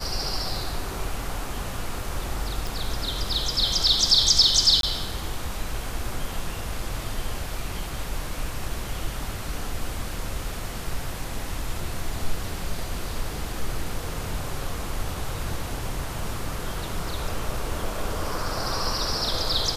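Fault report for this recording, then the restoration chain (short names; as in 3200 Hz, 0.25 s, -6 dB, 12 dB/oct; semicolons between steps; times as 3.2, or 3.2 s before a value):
2.67 pop
4.81–4.83 gap 22 ms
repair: de-click; interpolate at 4.81, 22 ms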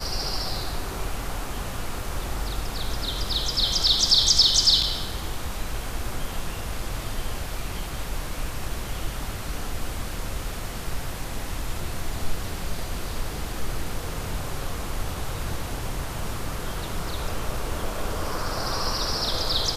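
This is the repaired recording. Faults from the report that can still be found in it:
none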